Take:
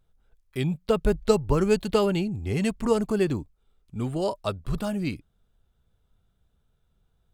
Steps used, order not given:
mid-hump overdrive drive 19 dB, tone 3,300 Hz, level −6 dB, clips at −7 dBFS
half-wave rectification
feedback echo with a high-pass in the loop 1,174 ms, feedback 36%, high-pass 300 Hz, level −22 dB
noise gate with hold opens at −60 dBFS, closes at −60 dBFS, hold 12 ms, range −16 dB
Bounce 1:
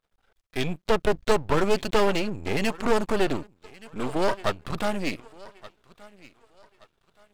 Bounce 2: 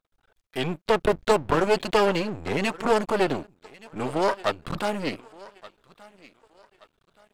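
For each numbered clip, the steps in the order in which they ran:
feedback echo with a high-pass in the loop, then noise gate with hold, then mid-hump overdrive, then half-wave rectification
feedback echo with a high-pass in the loop, then noise gate with hold, then half-wave rectification, then mid-hump overdrive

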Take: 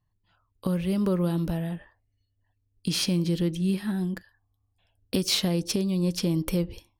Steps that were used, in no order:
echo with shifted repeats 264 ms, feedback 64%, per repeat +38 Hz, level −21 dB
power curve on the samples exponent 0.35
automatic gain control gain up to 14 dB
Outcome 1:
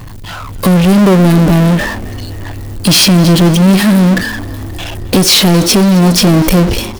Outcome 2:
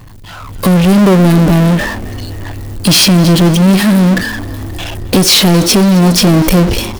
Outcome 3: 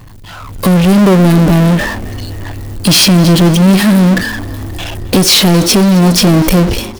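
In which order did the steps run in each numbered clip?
automatic gain control, then power curve on the samples, then echo with shifted repeats
power curve on the samples, then echo with shifted repeats, then automatic gain control
power curve on the samples, then automatic gain control, then echo with shifted repeats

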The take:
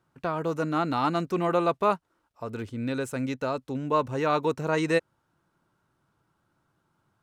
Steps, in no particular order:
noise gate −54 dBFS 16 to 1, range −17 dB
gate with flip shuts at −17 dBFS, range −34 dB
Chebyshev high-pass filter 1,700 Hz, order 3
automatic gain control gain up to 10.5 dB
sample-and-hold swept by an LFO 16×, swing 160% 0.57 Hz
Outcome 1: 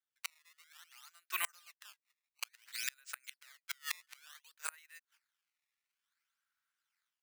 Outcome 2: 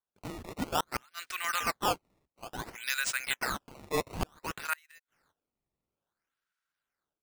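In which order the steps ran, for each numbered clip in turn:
sample-and-hold swept by an LFO, then Chebyshev high-pass filter, then noise gate, then automatic gain control, then gate with flip
automatic gain control, then noise gate, then Chebyshev high-pass filter, then sample-and-hold swept by an LFO, then gate with flip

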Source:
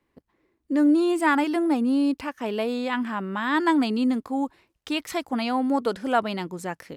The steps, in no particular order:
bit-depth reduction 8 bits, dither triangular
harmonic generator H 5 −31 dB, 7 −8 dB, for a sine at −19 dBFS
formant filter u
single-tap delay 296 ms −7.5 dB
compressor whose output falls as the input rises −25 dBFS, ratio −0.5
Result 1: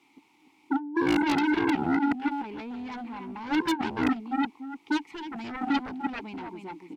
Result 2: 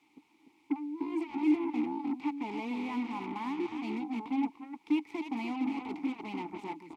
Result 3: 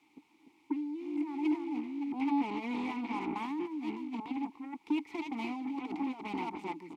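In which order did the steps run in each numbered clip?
single-tap delay, then bit-depth reduction, then formant filter, then compressor whose output falls as the input rises, then harmonic generator
compressor whose output falls as the input rises, then single-tap delay, then harmonic generator, then bit-depth reduction, then formant filter
single-tap delay, then harmonic generator, then compressor whose output falls as the input rises, then bit-depth reduction, then formant filter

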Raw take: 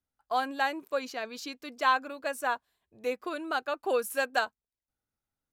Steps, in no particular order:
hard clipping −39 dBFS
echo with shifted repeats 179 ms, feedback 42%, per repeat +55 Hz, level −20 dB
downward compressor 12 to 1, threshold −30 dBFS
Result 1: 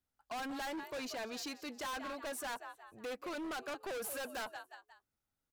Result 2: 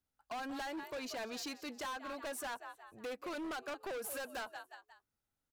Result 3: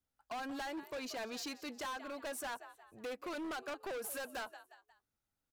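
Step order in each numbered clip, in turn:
echo with shifted repeats, then hard clipping, then downward compressor
echo with shifted repeats, then downward compressor, then hard clipping
downward compressor, then echo with shifted repeats, then hard clipping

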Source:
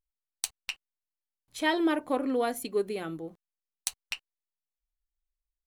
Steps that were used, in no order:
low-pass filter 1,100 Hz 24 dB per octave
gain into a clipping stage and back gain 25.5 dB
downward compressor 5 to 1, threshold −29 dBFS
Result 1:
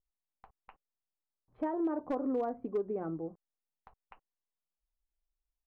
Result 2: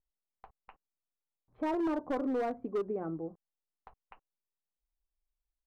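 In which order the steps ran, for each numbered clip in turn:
downward compressor, then low-pass filter, then gain into a clipping stage and back
low-pass filter, then gain into a clipping stage and back, then downward compressor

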